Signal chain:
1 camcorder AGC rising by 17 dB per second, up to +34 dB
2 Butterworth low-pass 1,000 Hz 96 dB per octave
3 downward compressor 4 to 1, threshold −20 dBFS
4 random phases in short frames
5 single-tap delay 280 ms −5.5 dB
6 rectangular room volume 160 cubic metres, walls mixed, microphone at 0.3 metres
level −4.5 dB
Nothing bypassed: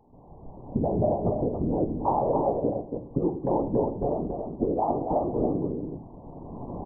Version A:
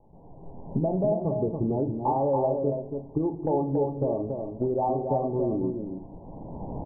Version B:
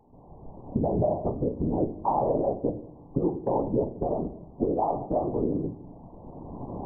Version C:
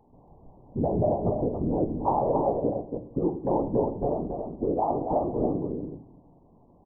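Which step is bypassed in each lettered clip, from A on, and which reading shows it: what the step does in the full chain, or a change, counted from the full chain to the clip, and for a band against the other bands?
4, 1 kHz band −1.5 dB
5, echo-to-direct ratio −4.0 dB to −10.0 dB
1, change in momentary loudness spread −5 LU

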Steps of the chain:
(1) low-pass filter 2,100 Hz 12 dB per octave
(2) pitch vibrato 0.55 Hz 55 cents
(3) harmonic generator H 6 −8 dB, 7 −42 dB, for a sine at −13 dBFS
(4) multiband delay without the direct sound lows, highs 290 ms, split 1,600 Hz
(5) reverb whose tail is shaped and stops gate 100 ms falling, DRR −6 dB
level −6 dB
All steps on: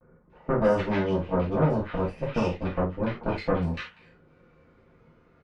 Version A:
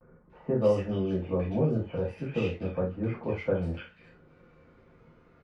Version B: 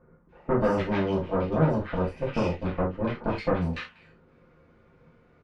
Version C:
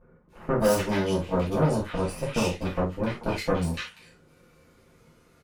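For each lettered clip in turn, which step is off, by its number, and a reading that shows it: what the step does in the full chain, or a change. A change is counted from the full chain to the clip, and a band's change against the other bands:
3, change in momentary loudness spread +1 LU
2, change in crest factor +1.5 dB
1, 4 kHz band +7.0 dB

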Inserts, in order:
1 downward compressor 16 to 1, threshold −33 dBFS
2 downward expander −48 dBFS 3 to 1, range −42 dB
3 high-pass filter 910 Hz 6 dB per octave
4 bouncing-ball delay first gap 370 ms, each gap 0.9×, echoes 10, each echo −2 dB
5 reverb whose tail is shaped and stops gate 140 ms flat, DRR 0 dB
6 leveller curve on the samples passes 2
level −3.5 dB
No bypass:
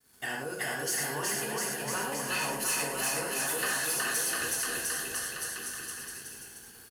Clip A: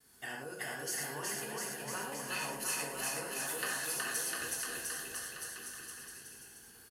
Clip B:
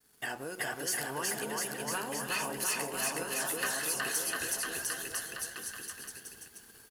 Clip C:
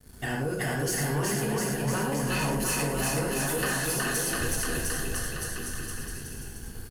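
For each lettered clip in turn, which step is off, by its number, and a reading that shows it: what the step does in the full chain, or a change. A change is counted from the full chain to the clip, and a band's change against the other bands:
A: 6, change in crest factor +6.5 dB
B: 5, change in crest factor +2.5 dB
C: 3, 125 Hz band +14.0 dB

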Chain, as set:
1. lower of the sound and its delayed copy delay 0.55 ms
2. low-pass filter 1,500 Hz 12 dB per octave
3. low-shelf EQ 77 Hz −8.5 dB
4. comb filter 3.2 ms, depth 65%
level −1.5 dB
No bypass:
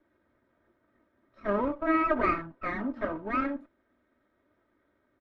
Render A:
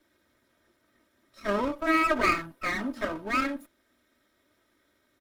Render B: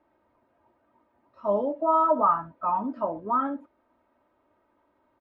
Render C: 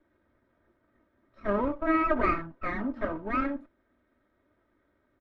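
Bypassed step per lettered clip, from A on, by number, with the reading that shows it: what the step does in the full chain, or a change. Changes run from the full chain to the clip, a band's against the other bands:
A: 2, 4 kHz band +15.0 dB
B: 1, 2 kHz band −15.0 dB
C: 3, 125 Hz band +2.5 dB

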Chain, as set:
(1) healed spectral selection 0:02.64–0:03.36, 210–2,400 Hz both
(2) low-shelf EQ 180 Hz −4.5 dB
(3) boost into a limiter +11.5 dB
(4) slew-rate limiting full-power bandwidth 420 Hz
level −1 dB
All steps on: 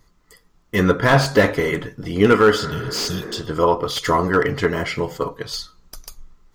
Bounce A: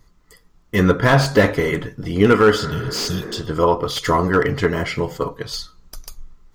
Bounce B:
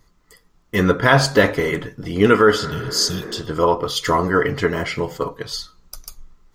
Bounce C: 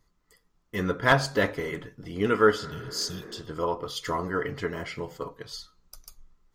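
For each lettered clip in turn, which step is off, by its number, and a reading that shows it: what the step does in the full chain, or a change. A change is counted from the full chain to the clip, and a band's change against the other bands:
2, 125 Hz band +2.5 dB
4, distortion level −13 dB
3, change in crest factor +6.5 dB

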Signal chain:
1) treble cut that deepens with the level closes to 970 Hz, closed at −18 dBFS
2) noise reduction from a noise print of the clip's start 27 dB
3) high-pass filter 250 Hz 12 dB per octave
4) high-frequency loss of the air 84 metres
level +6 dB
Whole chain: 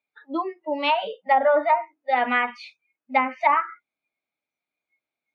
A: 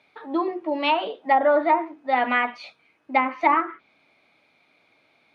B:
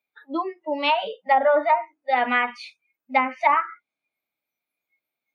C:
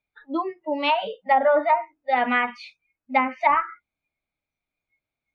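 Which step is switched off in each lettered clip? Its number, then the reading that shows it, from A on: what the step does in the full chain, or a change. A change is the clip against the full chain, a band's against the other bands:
2, 250 Hz band +4.5 dB
4, change in momentary loudness spread +1 LU
3, 250 Hz band +2.0 dB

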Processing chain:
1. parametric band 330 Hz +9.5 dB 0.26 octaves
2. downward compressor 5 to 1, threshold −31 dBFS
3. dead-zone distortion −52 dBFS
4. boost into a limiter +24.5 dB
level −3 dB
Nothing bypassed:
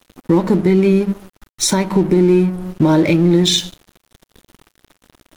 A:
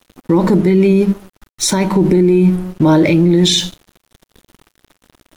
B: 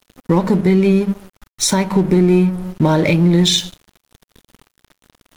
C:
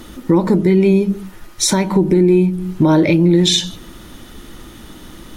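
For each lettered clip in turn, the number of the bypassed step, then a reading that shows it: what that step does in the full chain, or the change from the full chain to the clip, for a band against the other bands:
2, change in crest factor −2.0 dB
1, 500 Hz band −2.5 dB
3, distortion level −20 dB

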